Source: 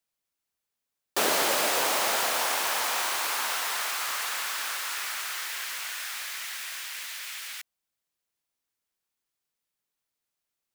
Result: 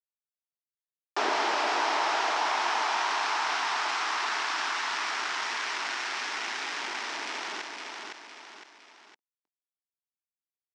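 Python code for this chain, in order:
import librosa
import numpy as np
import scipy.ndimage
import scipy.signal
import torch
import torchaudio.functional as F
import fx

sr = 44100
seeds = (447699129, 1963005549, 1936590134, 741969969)

y = fx.delta_mod(x, sr, bps=64000, step_db=-36.0)
y = fx.high_shelf(y, sr, hz=2900.0, db=-2.5)
y = fx.notch(y, sr, hz=550.0, q=12.0)
y = fx.backlash(y, sr, play_db=-31.0)
y = fx.cabinet(y, sr, low_hz=300.0, low_slope=24, high_hz=6700.0, hz=(510.0, 910.0, 5400.0), db=(-9, 5, 5))
y = fx.echo_feedback(y, sr, ms=510, feedback_pct=19, wet_db=-9)
y = fx.env_flatten(y, sr, amount_pct=50)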